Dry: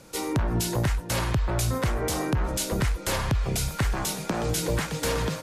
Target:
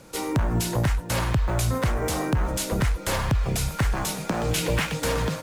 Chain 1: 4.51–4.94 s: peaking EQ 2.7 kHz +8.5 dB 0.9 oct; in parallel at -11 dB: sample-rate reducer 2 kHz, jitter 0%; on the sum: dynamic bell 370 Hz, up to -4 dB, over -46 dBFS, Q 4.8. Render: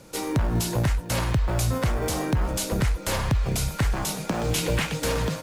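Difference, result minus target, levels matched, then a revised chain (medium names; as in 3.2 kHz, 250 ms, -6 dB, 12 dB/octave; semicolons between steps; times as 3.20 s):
sample-rate reducer: distortion +4 dB
4.51–4.94 s: peaking EQ 2.7 kHz +8.5 dB 0.9 oct; in parallel at -11 dB: sample-rate reducer 7.7 kHz, jitter 0%; on the sum: dynamic bell 370 Hz, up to -4 dB, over -46 dBFS, Q 4.8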